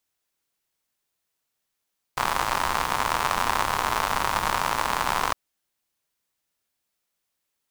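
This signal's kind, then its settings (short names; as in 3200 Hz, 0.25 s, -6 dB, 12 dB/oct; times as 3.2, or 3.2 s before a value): rain from filtered ticks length 3.16 s, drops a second 120, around 1000 Hz, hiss -9 dB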